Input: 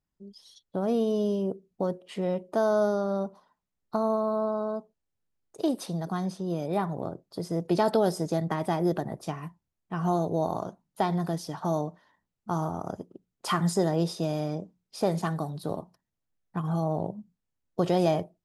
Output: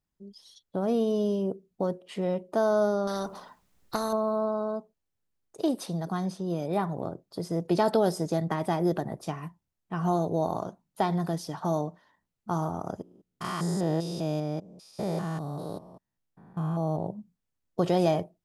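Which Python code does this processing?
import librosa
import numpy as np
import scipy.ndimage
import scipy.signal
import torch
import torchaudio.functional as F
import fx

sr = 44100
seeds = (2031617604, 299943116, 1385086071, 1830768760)

y = fx.spectral_comp(x, sr, ratio=2.0, at=(3.07, 4.13))
y = fx.spec_steps(y, sr, hold_ms=200, at=(13.02, 17.07))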